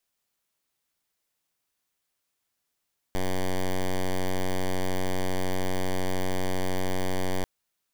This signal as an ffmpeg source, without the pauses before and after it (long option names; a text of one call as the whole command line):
ffmpeg -f lavfi -i "aevalsrc='0.0562*(2*lt(mod(92.8*t,1),0.07)-1)':duration=4.29:sample_rate=44100" out.wav